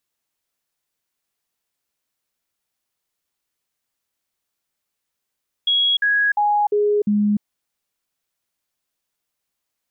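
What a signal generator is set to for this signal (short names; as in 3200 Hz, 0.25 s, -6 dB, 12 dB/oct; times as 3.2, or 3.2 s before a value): stepped sine 3320 Hz down, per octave 1, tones 5, 0.30 s, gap 0.05 s -14.5 dBFS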